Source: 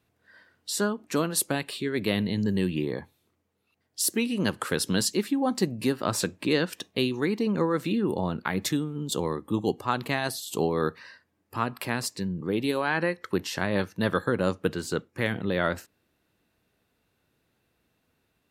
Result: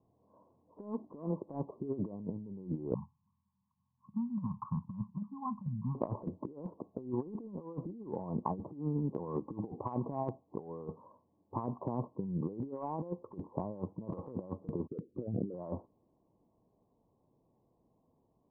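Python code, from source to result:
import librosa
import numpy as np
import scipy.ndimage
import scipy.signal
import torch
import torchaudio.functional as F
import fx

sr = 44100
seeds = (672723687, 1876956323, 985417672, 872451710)

y = fx.ellip_bandstop(x, sr, low_hz=200.0, high_hz=1000.0, order=3, stop_db=40, at=(2.94, 5.95))
y = fx.envelope_sharpen(y, sr, power=3.0, at=(14.87, 15.54))
y = scipy.signal.sosfilt(scipy.signal.cheby1(8, 1.0, 1100.0, 'lowpass', fs=sr, output='sos'), y)
y = fx.peak_eq(y, sr, hz=71.0, db=-11.0, octaves=0.41)
y = fx.over_compress(y, sr, threshold_db=-33.0, ratio=-0.5)
y = F.gain(torch.from_numpy(y), -3.5).numpy()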